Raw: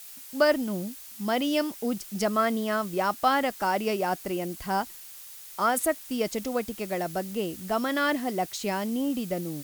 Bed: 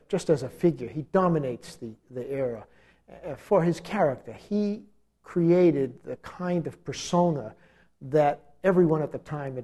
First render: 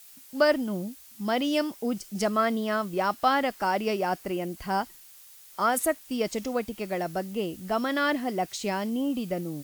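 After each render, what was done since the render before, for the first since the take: noise print and reduce 6 dB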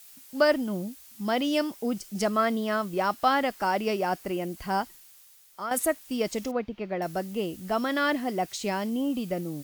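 4.79–5.71 fade out, to -10.5 dB; 6.51–7.02 air absorption 270 m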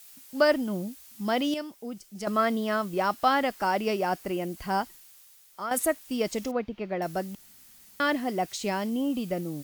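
1.54–2.27 gain -8.5 dB; 7.35–8 room tone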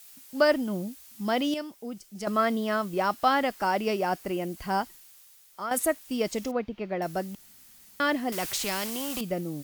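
8.32–9.21 spectral compressor 2:1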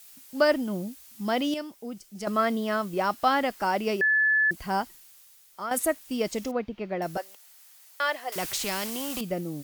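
4.01–4.51 bleep 1730 Hz -19 dBFS; 7.17–8.36 HPF 530 Hz 24 dB/oct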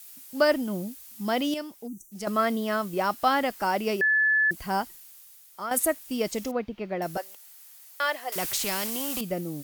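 1.87–2.12 spectral gain 400–5700 Hz -29 dB; bell 14000 Hz +5.5 dB 1.1 oct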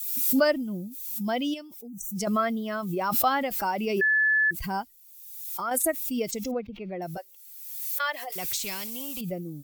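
per-bin expansion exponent 1.5; backwards sustainer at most 39 dB/s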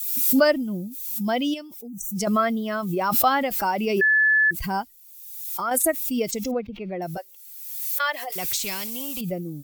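gain +4 dB

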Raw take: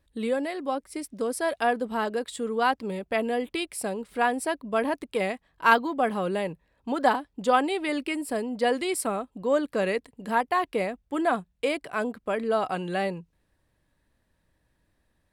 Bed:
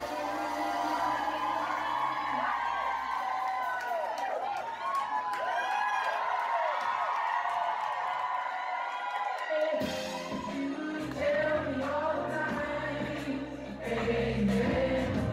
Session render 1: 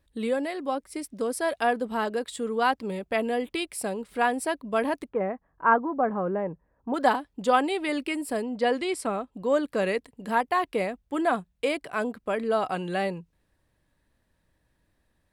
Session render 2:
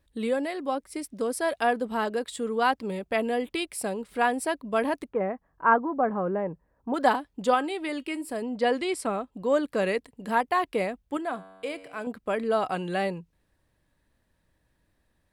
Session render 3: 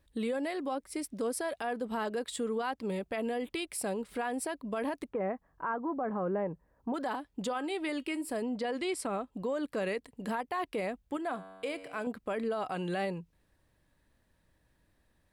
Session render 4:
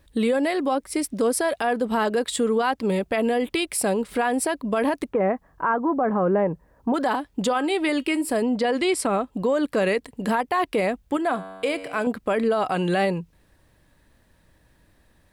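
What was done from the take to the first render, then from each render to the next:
5.09–6.94 LPF 1500 Hz 24 dB/oct; 8.42–9.34 air absorption 52 m
7.54–8.42 resonator 320 Hz, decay 0.2 s, mix 40%; 11.17–12.07 resonator 95 Hz, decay 1.6 s
compressor 1.5:1, threshold -34 dBFS, peak gain reduction 7 dB; limiter -25.5 dBFS, peak gain reduction 10 dB
gain +11.5 dB

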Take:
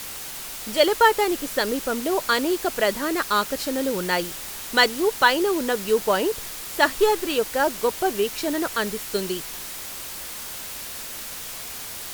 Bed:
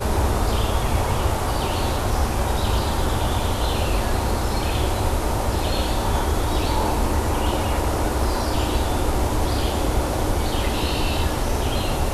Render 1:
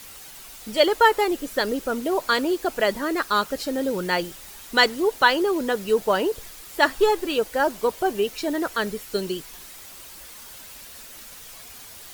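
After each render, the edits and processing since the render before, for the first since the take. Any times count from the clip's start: denoiser 9 dB, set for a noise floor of -35 dBFS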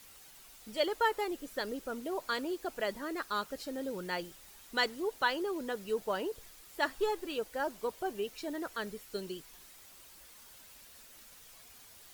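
gain -13 dB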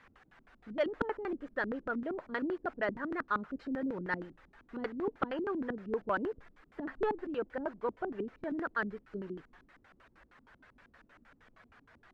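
LFO low-pass square 6.4 Hz 260–1600 Hz; soft clip -18 dBFS, distortion -26 dB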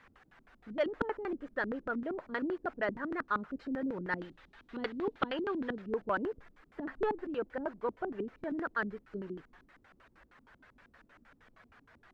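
4.18–5.82 bell 3600 Hz +10.5 dB 1.2 oct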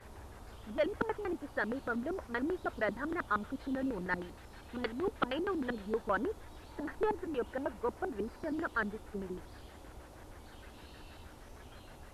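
add bed -30.5 dB

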